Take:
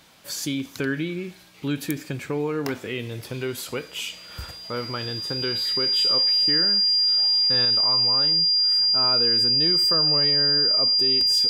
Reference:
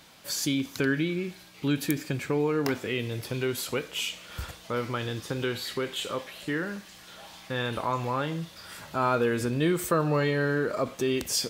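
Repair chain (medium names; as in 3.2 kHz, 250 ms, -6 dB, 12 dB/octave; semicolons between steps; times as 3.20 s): band-stop 4.8 kHz, Q 30; gain correction +4.5 dB, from 7.65 s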